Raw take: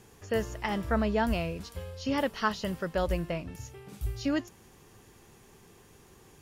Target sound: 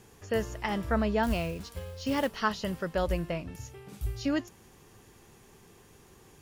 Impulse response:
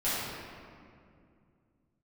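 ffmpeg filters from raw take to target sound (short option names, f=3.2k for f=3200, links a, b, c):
-filter_complex "[0:a]asettb=1/sr,asplit=3[a][b][c];[a]atrim=end=1.234[d];[b]atrim=start=1.23:end=2.36,asetpts=PTS-STARTPTS,afade=t=in:d=0.004:c=qsin,afade=t=out:st=1.126:d=0.004:c=qsin,acrusher=bits=5:mode=log:mix=0:aa=0.000001[e];[c]atrim=start=2.356[f];[d][e]acrossfade=d=0.004:c1=hsin:c2=qsin[g];[g][f]acrossfade=d=0.004:c1=qsin:c2=hsin"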